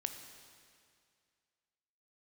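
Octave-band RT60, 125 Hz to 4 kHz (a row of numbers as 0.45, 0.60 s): 2.2, 2.2, 2.2, 2.2, 2.2, 2.1 s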